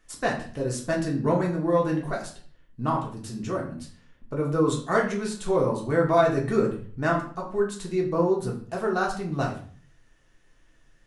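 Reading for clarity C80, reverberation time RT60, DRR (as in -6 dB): 12.0 dB, 0.45 s, -2.5 dB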